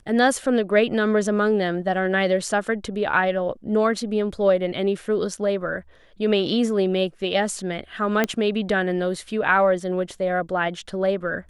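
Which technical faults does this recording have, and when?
0:08.24: click −7 dBFS

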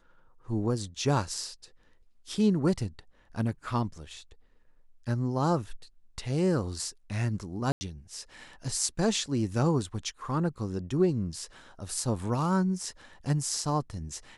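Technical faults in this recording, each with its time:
0:07.72–0:07.81: drop-out 90 ms

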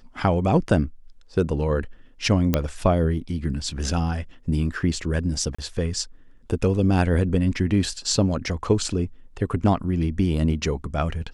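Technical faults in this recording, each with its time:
0:02.54: click −6 dBFS
0:05.55–0:05.58: drop-out 35 ms

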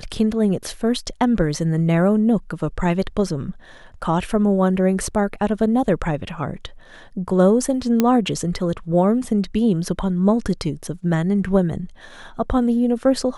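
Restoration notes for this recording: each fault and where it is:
0:08.00: click −4 dBFS

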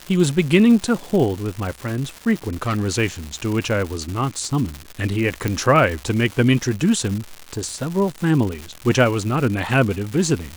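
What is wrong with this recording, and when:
surface crackle 290 per second −25 dBFS
0:02.47–0:02.88: clipping −17 dBFS
0:05.48: click −8 dBFS

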